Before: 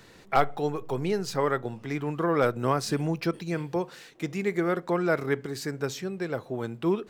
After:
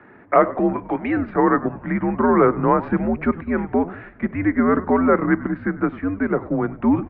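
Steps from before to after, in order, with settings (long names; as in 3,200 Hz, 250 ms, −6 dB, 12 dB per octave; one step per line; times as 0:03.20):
0:00.73–0:01.17: spectral tilt +4 dB per octave
in parallel at +2 dB: output level in coarse steps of 17 dB
on the sum: single-sideband voice off tune −100 Hz 250–2,100 Hz
echo with shifted repeats 98 ms, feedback 47%, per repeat −75 Hz, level −17 dB
level +6.5 dB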